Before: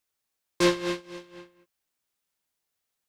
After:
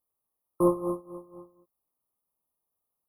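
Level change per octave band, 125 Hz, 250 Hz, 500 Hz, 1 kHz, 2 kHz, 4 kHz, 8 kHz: 0.0 dB, 0.0 dB, 0.0 dB, 0.0 dB, under -40 dB, under -40 dB, -13.0 dB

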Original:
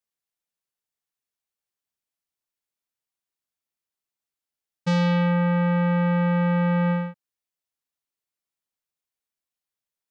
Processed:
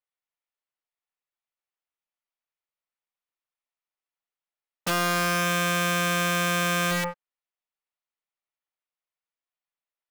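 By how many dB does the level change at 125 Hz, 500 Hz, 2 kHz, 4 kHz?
-10.0, -2.5, +6.5, +11.0 dB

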